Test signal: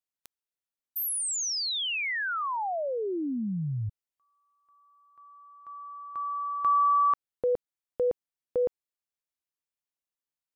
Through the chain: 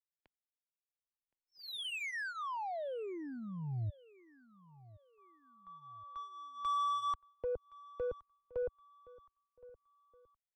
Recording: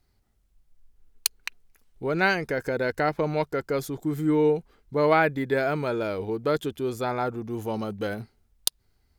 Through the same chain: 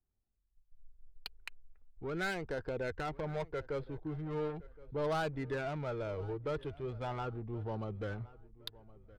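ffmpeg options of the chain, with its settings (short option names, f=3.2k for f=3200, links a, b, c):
-filter_complex "[0:a]agate=range=-10dB:threshold=-51dB:ratio=3:release=252:detection=rms,lowpass=f=4.3k:w=0.5412,lowpass=f=4.3k:w=1.3066,asubboost=boost=7:cutoff=78,acrossover=split=120|2500[a][b][c];[a]acompressor=threshold=-28dB:ratio=6:attack=0.3:knee=2.83:detection=peak[d];[d][b][c]amix=inputs=3:normalize=0,aresample=11025,asoftclip=type=tanh:threshold=-21.5dB,aresample=44100,adynamicsmooth=sensitivity=6:basefreq=1.5k,flanger=delay=0.2:depth=2:regen=-51:speed=0.39:shape=sinusoidal,asplit=2[e][f];[f]adelay=1069,lowpass=f=2.8k:p=1,volume=-20.5dB,asplit=2[g][h];[h]adelay=1069,lowpass=f=2.8k:p=1,volume=0.39,asplit=2[i][j];[j]adelay=1069,lowpass=f=2.8k:p=1,volume=0.39[k];[g][i][k]amix=inputs=3:normalize=0[l];[e][l]amix=inputs=2:normalize=0,volume=-4.5dB"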